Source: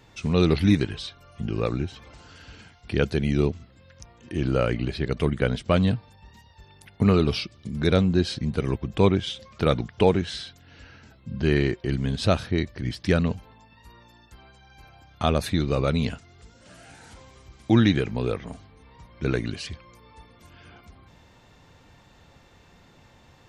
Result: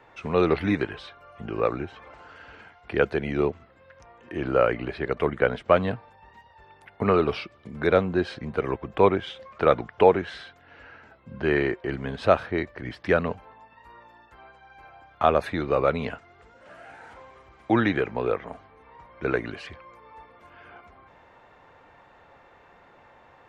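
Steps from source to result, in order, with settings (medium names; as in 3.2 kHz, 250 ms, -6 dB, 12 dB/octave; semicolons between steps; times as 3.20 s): three-band isolator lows -16 dB, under 410 Hz, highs -22 dB, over 2.2 kHz; trim +6.5 dB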